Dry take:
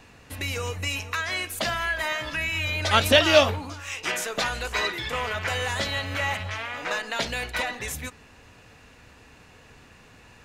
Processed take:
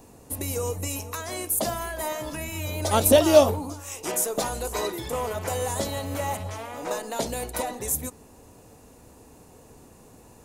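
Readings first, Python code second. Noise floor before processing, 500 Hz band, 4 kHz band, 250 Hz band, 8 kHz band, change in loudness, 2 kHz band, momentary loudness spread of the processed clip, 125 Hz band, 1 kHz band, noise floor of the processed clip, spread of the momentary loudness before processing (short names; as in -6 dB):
-52 dBFS, +3.5 dB, -8.5 dB, +4.5 dB, +6.5 dB, -0.5 dB, -11.5 dB, 14 LU, 0.0 dB, -1.0 dB, -52 dBFS, 13 LU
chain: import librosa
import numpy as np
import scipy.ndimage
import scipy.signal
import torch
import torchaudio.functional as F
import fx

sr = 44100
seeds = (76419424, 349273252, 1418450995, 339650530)

y = fx.curve_eq(x, sr, hz=(110.0, 360.0, 610.0, 940.0, 1600.0, 2700.0, 4800.0, 10000.0), db=(0, 6, 3, 1, -12, -12, -4, 12))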